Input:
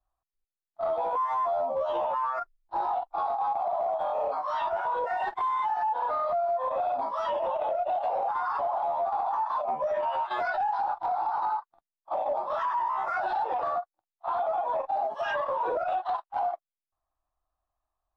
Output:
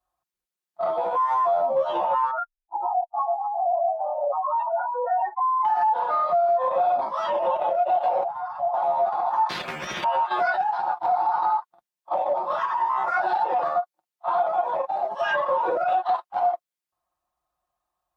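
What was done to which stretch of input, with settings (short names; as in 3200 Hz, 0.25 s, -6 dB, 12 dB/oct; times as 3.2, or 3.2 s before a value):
2.31–5.65 spectral contrast raised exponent 2.2
8.24–8.74 EQ curve 130 Hz 0 dB, 260 Hz -14 dB, 430 Hz -29 dB, 660 Hz 0 dB, 1100 Hz -14 dB
9.49–10.04 spectral compressor 10:1
12.66–15.75 HPF 100 Hz
whole clip: HPF 86 Hz 12 dB/oct; comb 5.6 ms, depth 57%; gain +4 dB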